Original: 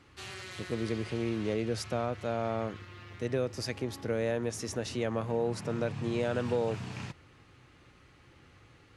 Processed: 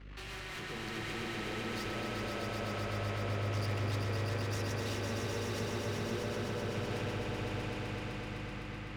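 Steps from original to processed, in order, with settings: LPF 3100 Hz 12 dB/oct; tilt +1.5 dB/oct; negative-ratio compressor -38 dBFS, ratio -1; rotary speaker horn 5 Hz; hum 50 Hz, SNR 12 dB; tube stage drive 48 dB, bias 0.55; swelling echo 0.127 s, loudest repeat 5, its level -4.5 dB; spring tank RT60 3.9 s, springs 39 ms, chirp 65 ms, DRR 3 dB; gain +6 dB

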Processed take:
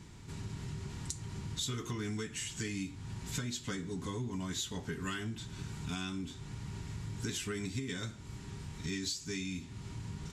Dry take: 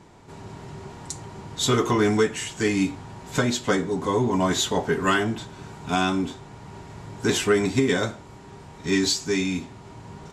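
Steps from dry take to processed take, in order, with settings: passive tone stack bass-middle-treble 6-0-2; compressor 4:1, threshold -54 dBFS, peak gain reduction 16 dB; gain +16.5 dB

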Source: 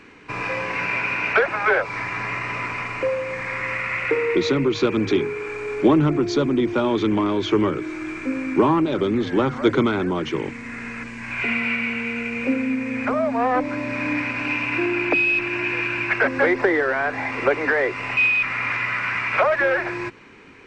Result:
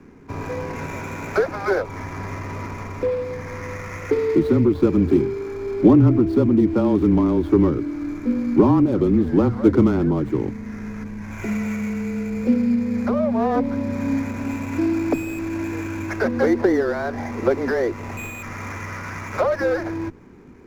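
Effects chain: median filter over 15 samples; tilt shelf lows +7.5 dB, about 700 Hz; frequency shift -23 Hz; gain -1 dB

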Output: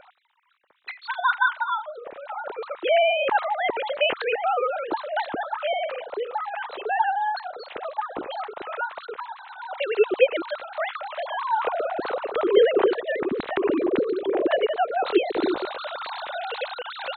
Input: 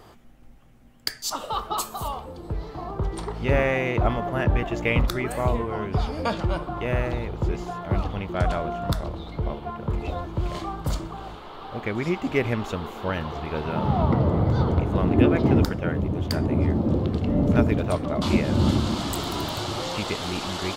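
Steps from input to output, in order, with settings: sine-wave speech; varispeed +21%; gain -1 dB

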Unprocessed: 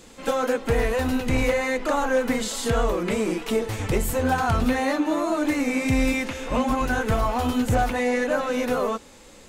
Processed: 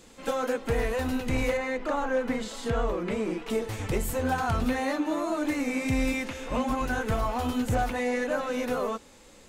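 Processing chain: 1.57–3.5 LPF 3000 Hz 6 dB/oct; gain -5 dB

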